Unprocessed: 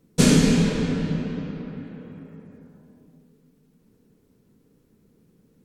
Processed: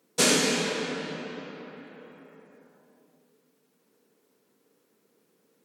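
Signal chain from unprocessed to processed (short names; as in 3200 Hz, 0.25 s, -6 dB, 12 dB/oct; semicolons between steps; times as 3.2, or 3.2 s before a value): HPF 520 Hz 12 dB/oct; gain +2 dB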